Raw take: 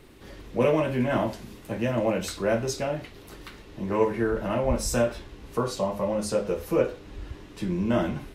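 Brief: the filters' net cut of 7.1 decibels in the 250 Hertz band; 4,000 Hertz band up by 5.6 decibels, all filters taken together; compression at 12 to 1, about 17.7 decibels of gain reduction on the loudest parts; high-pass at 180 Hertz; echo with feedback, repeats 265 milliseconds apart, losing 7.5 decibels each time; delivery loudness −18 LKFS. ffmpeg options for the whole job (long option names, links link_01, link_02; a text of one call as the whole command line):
ffmpeg -i in.wav -af "highpass=180,equalizer=frequency=250:width_type=o:gain=-8,equalizer=frequency=4000:width_type=o:gain=7.5,acompressor=threshold=-37dB:ratio=12,aecho=1:1:265|530|795|1060|1325:0.422|0.177|0.0744|0.0312|0.0131,volume=23dB" out.wav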